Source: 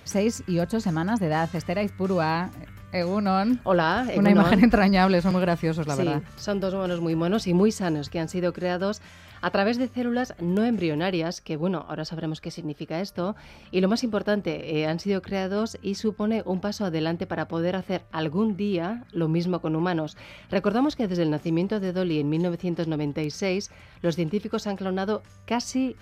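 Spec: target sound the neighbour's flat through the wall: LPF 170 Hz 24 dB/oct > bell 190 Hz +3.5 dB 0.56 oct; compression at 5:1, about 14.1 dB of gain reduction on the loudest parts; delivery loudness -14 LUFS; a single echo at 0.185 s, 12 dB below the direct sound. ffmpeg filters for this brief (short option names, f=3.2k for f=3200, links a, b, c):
-af "acompressor=threshold=-29dB:ratio=5,lowpass=f=170:w=0.5412,lowpass=f=170:w=1.3066,equalizer=f=190:t=o:w=0.56:g=3.5,aecho=1:1:185:0.251,volume=25dB"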